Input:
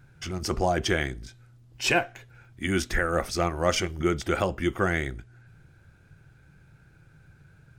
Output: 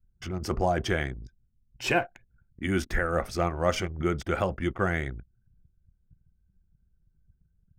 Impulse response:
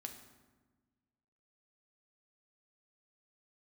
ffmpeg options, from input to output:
-af "adynamicequalizer=threshold=0.01:dfrequency=330:dqfactor=2.2:tfrequency=330:tqfactor=2.2:attack=5:release=100:ratio=0.375:range=2.5:mode=cutabove:tftype=bell,anlmdn=0.398,equalizer=f=6300:t=o:w=2.7:g=-7.5"

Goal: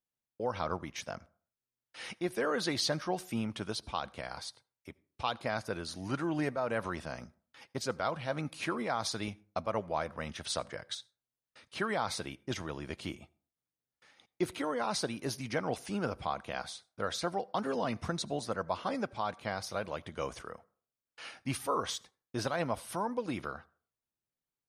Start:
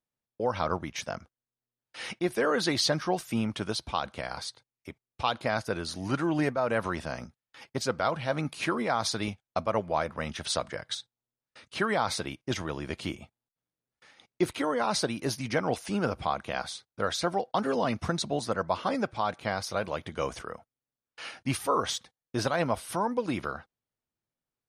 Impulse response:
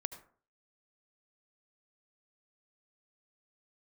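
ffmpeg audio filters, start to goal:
-filter_complex "[0:a]asplit=2[s0][s1];[1:a]atrim=start_sample=2205,highshelf=f=8200:g=9.5[s2];[s1][s2]afir=irnorm=-1:irlink=0,volume=0.224[s3];[s0][s3]amix=inputs=2:normalize=0,volume=0.447"

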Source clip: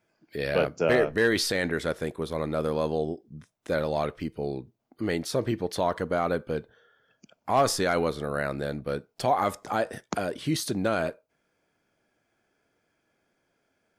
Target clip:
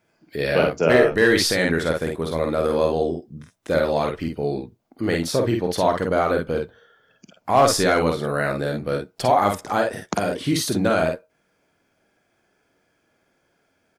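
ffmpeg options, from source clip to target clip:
-af "aecho=1:1:49|60:0.631|0.266,volume=1.78"

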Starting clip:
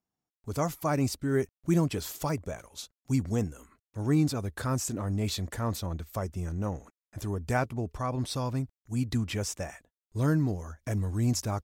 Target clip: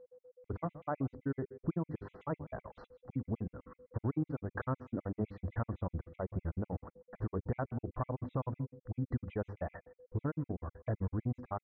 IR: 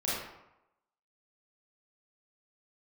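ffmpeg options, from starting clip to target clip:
-filter_complex "[0:a]lowpass=f=1500:w=0.5412,lowpass=f=1500:w=1.3066,bandreject=f=50:t=h:w=6,bandreject=f=100:t=h:w=6,bandreject=f=150:t=h:w=6,bandreject=f=200:t=h:w=6,bandreject=f=250:t=h:w=6,bandreject=f=300:t=h:w=6,bandreject=f=350:t=h:w=6,bandreject=f=400:t=h:w=6,acompressor=threshold=0.00631:ratio=4,aeval=exprs='val(0)+0.000708*sin(2*PI*500*n/s)':c=same,asplit=2[s0][s1];[s1]aecho=0:1:155:0.0891[s2];[s0][s2]amix=inputs=2:normalize=0,afftfilt=real='re*gt(sin(2*PI*7.9*pts/sr)*(1-2*mod(floor(b*sr/1024/2000),2)),0)':imag='im*gt(sin(2*PI*7.9*pts/sr)*(1-2*mod(floor(b*sr/1024/2000),2)),0)':win_size=1024:overlap=0.75,volume=3.35"

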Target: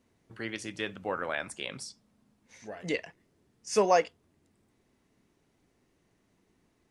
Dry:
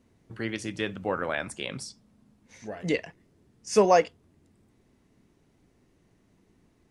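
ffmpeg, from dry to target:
-af "lowshelf=f=350:g=-7,volume=0.794"

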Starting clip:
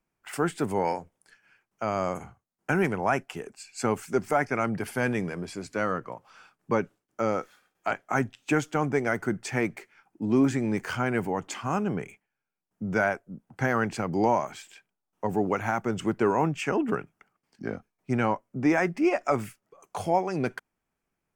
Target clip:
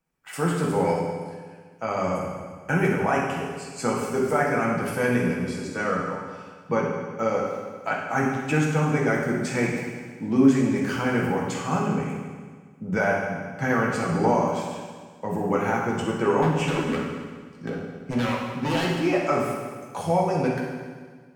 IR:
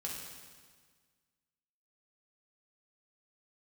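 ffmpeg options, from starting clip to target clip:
-filter_complex "[0:a]asettb=1/sr,asplit=3[s0][s1][s2];[s0]atrim=end=16.424[s3];[s1]atrim=start=16.42:end=18.85,asetpts=PTS-STARTPTS,afade=t=in:d=0.004:c=qsin,afade=t=out:st=2.426:d=0.004:c=qsin,aeval=exprs='0.0891*(abs(mod(val(0)/0.0891+3,4)-2)-1)':c=same[s4];[s2]atrim=start=18.846[s5];[s3][s4]acrossfade=d=0.004:c1=hsin:c2=qsin[s6];[s6][s5]acrossfade=d=0.004:c1=qsin:c2=hsin[s7];[1:a]atrim=start_sample=2205[s8];[s7][s8]afir=irnorm=-1:irlink=0,volume=1.41"

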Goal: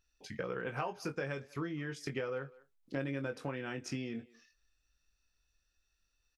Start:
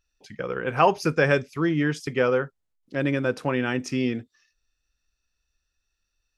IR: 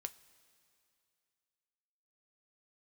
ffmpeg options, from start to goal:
-filter_complex "[0:a]acompressor=threshold=0.0224:ratio=12,asplit=2[s0][s1];[s1]adelay=22,volume=0.447[s2];[s0][s2]amix=inputs=2:normalize=0,asplit=2[s3][s4];[s4]adelay=200,highpass=300,lowpass=3400,asoftclip=type=hard:threshold=0.0282,volume=0.0891[s5];[s3][s5]amix=inputs=2:normalize=0,volume=0.794"

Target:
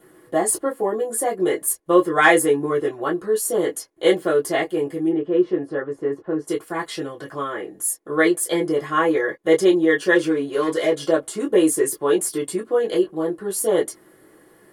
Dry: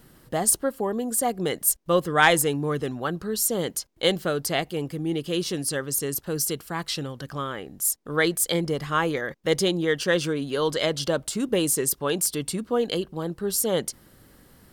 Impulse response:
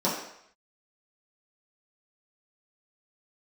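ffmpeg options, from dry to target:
-filter_complex "[0:a]asplit=3[s0][s1][s2];[s0]afade=t=out:st=5.08:d=0.02[s3];[s1]lowpass=1500,afade=t=in:st=5.08:d=0.02,afade=t=out:st=6.47:d=0.02[s4];[s2]afade=t=in:st=6.47:d=0.02[s5];[s3][s4][s5]amix=inputs=3:normalize=0,asplit=3[s6][s7][s8];[s6]afade=t=out:st=10.14:d=0.02[s9];[s7]volume=9.44,asoftclip=hard,volume=0.106,afade=t=in:st=10.14:d=0.02,afade=t=out:st=11.02:d=0.02[s10];[s8]afade=t=in:st=11.02:d=0.02[s11];[s9][s10][s11]amix=inputs=3:normalize=0[s12];[1:a]atrim=start_sample=2205,atrim=end_sample=3087,asetrate=83790,aresample=44100[s13];[s12][s13]afir=irnorm=-1:irlink=0,volume=0.562"

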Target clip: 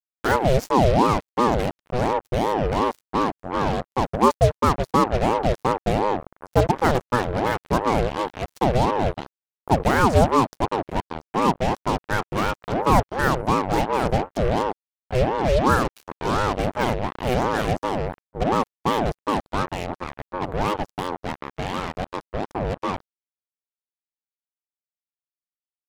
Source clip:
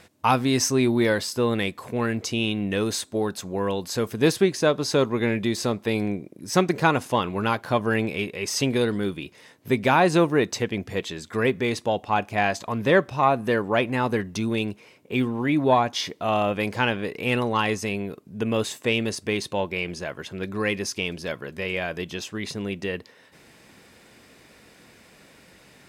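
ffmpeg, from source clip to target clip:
-af "tiltshelf=f=900:g=8.5,acrusher=bits=3:mix=0:aa=0.5,aeval=exprs='val(0)*sin(2*PI*490*n/s+490*0.5/2.8*sin(2*PI*2.8*n/s))':c=same"

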